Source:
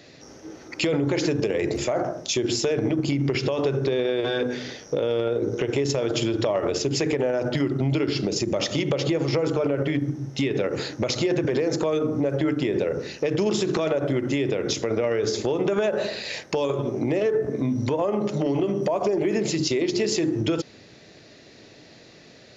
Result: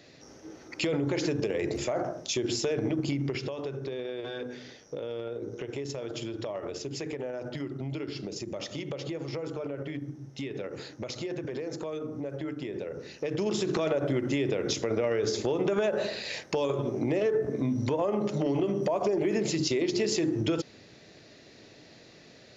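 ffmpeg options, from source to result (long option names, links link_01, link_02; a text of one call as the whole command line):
ffmpeg -i in.wav -af "volume=2.5dB,afade=type=out:start_time=3.08:duration=0.51:silence=0.473151,afade=type=in:start_time=12.9:duration=0.93:silence=0.398107" out.wav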